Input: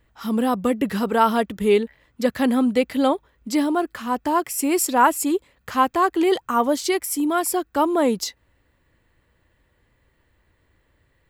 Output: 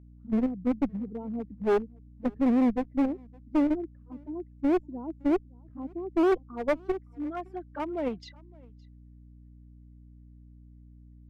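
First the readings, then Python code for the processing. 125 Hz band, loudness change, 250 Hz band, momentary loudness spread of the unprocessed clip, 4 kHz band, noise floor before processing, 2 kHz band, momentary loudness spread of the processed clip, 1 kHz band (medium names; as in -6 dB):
no reading, -8.0 dB, -5.5 dB, 7 LU, under -20 dB, -65 dBFS, -14.0 dB, 15 LU, -16.5 dB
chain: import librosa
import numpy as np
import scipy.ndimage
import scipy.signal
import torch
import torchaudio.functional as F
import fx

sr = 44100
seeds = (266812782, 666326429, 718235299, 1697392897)

p1 = fx.bin_expand(x, sr, power=1.5)
p2 = fx.env_flanger(p1, sr, rest_ms=4.4, full_db=-19.5)
p3 = fx.filter_sweep_lowpass(p2, sr, from_hz=330.0, to_hz=8800.0, start_s=6.13, end_s=9.38, q=1.8)
p4 = fx.level_steps(p3, sr, step_db=20)
p5 = p3 + (p4 * librosa.db_to_amplitude(1.0))
p6 = fx.add_hum(p5, sr, base_hz=60, snr_db=19)
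p7 = fx.high_shelf(p6, sr, hz=4900.0, db=-7.0)
p8 = fx.clip_asym(p7, sr, top_db=-19.5, bottom_db=-9.5)
p9 = fx.peak_eq(p8, sr, hz=2200.0, db=6.5, octaves=0.52)
p10 = p9 + fx.echo_single(p9, sr, ms=564, db=-23.0, dry=0)
p11 = fx.upward_expand(p10, sr, threshold_db=-26.0, expansion=1.5)
y = p11 * librosa.db_to_amplitude(-6.5)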